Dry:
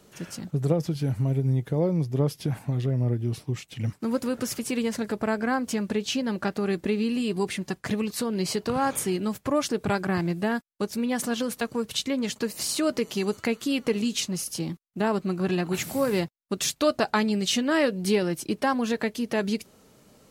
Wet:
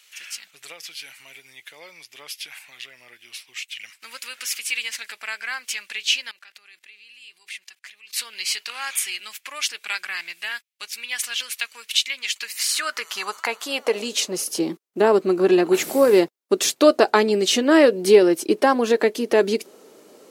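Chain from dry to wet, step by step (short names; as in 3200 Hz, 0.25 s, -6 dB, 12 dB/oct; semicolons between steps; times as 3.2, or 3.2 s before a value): 6.31–8.13 level quantiser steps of 22 dB; high-pass sweep 2400 Hz -> 370 Hz, 12.39–14.5; gain +5.5 dB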